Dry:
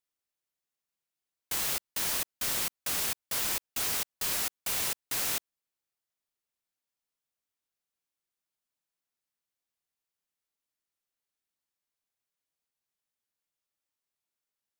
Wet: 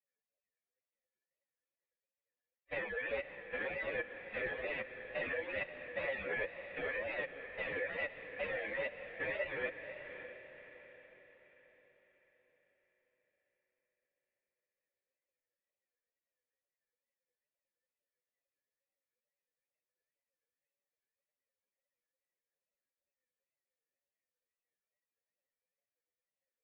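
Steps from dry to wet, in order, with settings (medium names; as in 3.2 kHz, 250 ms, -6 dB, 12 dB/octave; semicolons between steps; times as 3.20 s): harmonic-percussive separation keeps percussive; cascade formant filter e; time stretch by phase-locked vocoder 1.8×; wow and flutter 120 cents; echo that smears into a reverb 569 ms, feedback 46%, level -9.5 dB; trim +15.5 dB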